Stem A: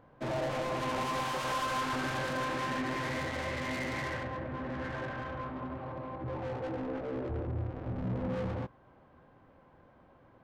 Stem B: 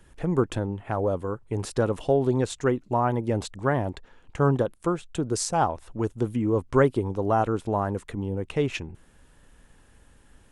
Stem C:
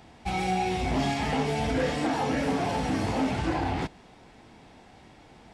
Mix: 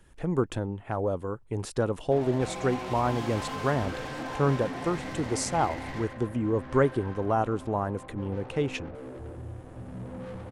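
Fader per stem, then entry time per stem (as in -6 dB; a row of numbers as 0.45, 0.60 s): -5.0, -3.0, -11.5 dB; 1.90, 0.00, 2.15 s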